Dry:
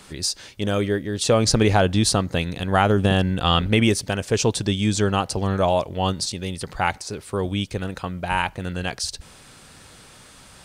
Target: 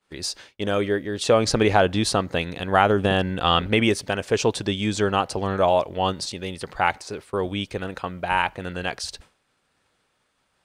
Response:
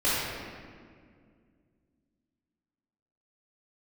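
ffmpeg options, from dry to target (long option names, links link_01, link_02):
-af "agate=range=-33dB:threshold=-33dB:ratio=3:detection=peak,bass=frequency=250:gain=-8,treble=frequency=4000:gain=-8,volume=1.5dB"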